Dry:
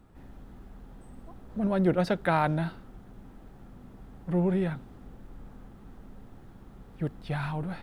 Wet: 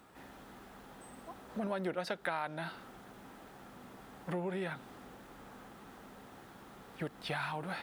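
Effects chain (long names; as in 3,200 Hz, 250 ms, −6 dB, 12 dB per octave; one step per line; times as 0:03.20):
high-pass filter 950 Hz 6 dB per octave
downward compressor 5 to 1, threshold −43 dBFS, peak gain reduction 17 dB
level +8.5 dB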